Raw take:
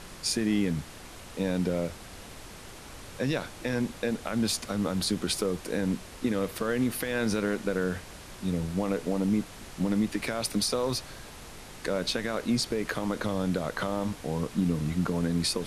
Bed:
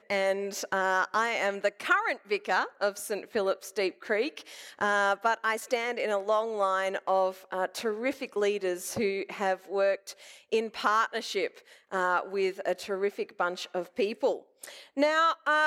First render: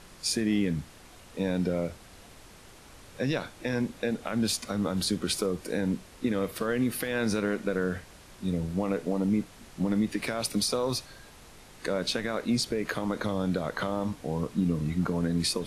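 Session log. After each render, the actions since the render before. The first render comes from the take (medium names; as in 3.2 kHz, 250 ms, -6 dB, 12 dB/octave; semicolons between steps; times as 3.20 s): noise print and reduce 6 dB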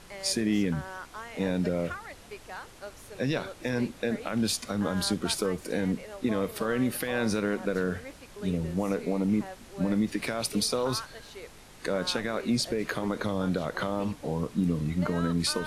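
add bed -14.5 dB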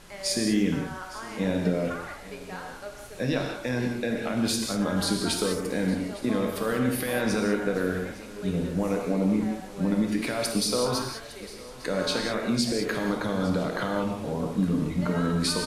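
delay 857 ms -18.5 dB; gated-style reverb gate 220 ms flat, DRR 1.5 dB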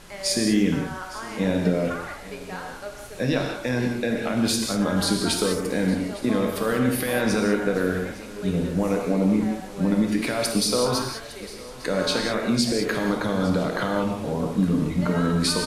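trim +3.5 dB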